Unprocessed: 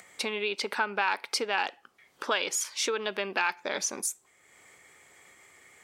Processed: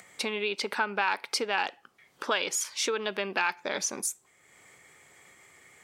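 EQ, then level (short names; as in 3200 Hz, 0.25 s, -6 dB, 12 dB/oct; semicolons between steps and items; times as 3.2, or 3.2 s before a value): bell 140 Hz +5 dB 1.1 oct; 0.0 dB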